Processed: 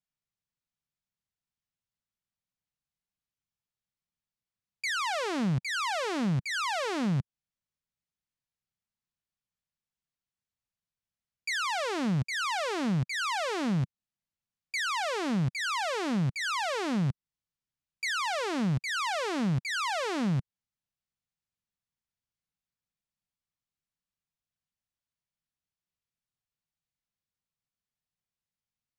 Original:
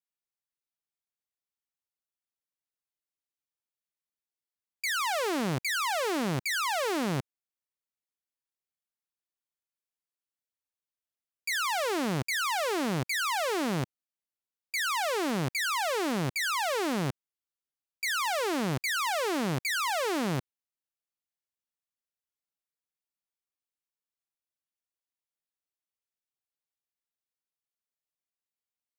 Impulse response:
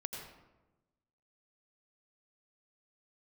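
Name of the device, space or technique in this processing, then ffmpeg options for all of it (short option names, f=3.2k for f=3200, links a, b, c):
jukebox: -af "lowpass=7k,lowshelf=f=240:t=q:w=1.5:g=10.5,acompressor=threshold=-26dB:ratio=5"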